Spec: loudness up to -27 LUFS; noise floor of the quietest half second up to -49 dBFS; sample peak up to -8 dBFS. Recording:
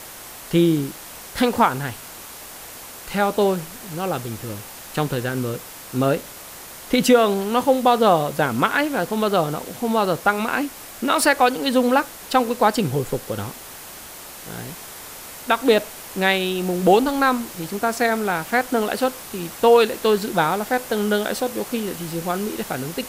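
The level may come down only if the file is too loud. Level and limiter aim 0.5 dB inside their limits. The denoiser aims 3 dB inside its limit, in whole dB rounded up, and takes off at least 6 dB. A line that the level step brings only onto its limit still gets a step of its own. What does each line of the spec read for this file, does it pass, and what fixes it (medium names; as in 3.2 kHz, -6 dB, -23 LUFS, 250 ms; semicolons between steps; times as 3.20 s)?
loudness -21.0 LUFS: fail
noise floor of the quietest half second -39 dBFS: fail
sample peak -3.5 dBFS: fail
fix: noise reduction 7 dB, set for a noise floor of -39 dBFS; trim -6.5 dB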